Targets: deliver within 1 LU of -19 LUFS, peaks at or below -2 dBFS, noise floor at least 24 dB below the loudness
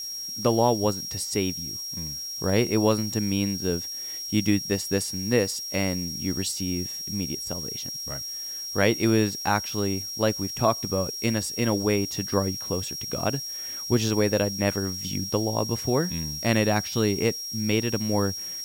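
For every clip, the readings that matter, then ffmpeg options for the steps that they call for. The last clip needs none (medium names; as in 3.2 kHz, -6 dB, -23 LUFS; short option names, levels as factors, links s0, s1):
steady tone 5.6 kHz; tone level -32 dBFS; noise floor -35 dBFS; noise floor target -50 dBFS; loudness -26.0 LUFS; peak level -8.0 dBFS; loudness target -19.0 LUFS
-> -af "bandreject=f=5600:w=30"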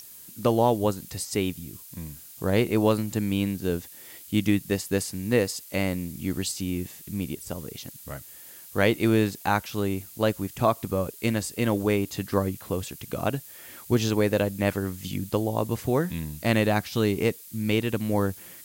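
steady tone not found; noise floor -46 dBFS; noise floor target -51 dBFS
-> -af "afftdn=nr=6:nf=-46"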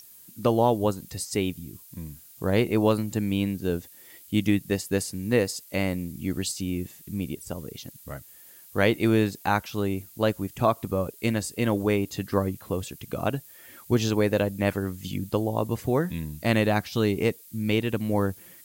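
noise floor -50 dBFS; noise floor target -51 dBFS
-> -af "afftdn=nr=6:nf=-50"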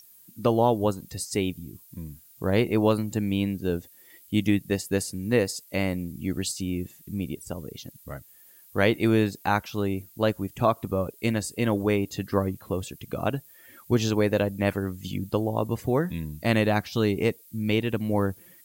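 noise floor -54 dBFS; loudness -27.0 LUFS; peak level -8.5 dBFS; loudness target -19.0 LUFS
-> -af "volume=2.51,alimiter=limit=0.794:level=0:latency=1"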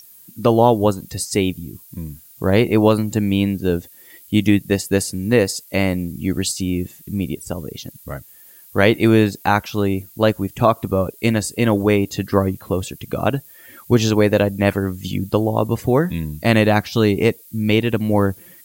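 loudness -19.0 LUFS; peak level -2.0 dBFS; noise floor -46 dBFS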